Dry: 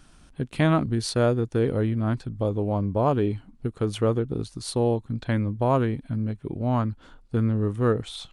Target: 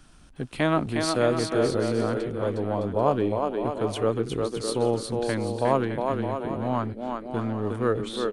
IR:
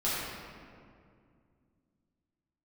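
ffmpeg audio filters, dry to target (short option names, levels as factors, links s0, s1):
-filter_complex "[0:a]acrossover=split=230[s0][s1];[s0]asoftclip=type=hard:threshold=0.02[s2];[s1]aecho=1:1:360|612|788.4|911.9|998.3:0.631|0.398|0.251|0.158|0.1[s3];[s2][s3]amix=inputs=2:normalize=0"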